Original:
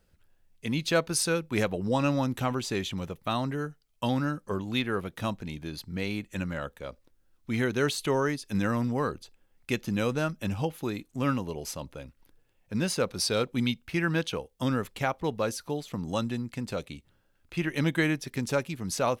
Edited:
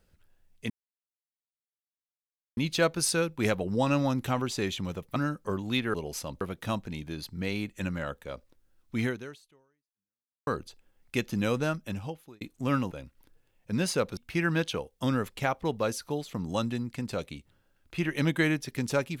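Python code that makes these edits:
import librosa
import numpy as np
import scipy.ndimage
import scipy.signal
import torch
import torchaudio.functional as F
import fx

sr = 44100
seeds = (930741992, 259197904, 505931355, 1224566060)

y = fx.edit(x, sr, fx.insert_silence(at_s=0.7, length_s=1.87),
    fx.cut(start_s=3.29, length_s=0.89),
    fx.fade_out_span(start_s=7.59, length_s=1.43, curve='exp'),
    fx.fade_out_span(start_s=10.19, length_s=0.77),
    fx.move(start_s=11.46, length_s=0.47, to_s=4.96),
    fx.cut(start_s=13.19, length_s=0.57), tone=tone)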